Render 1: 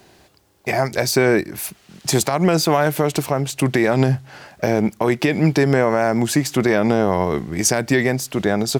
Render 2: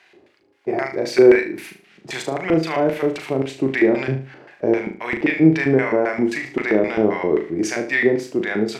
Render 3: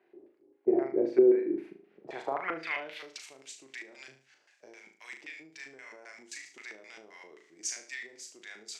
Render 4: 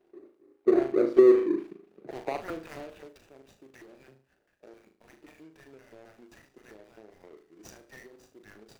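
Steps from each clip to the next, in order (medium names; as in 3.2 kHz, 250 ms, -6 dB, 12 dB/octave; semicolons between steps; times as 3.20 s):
LFO band-pass square 3.8 Hz 360–2100 Hz; harmonic-percussive split percussive -5 dB; flutter echo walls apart 6.4 m, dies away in 0.37 s; trim +8 dB
compression 6:1, threshold -17 dBFS, peak gain reduction 11 dB; band-pass sweep 350 Hz -> 7 kHz, 1.87–3.26 s
median filter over 41 samples; trim +4.5 dB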